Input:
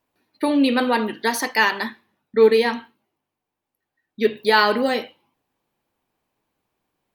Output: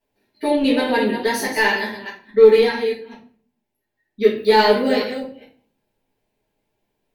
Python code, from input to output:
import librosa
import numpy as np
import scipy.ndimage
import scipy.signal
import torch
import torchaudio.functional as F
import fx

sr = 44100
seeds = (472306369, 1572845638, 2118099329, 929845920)

p1 = fx.reverse_delay(x, sr, ms=209, wet_db=-8.5)
p2 = fx.peak_eq(p1, sr, hz=1200.0, db=-13.5, octaves=0.35)
p3 = np.clip(p2, -10.0 ** (-14.5 / 20.0), 10.0 ** (-14.5 / 20.0))
p4 = p2 + (p3 * librosa.db_to_amplitude(-8.0))
p5 = fx.room_shoebox(p4, sr, seeds[0], volume_m3=39.0, walls='mixed', distance_m=1.6)
y = p5 * librosa.db_to_amplitude(-11.0)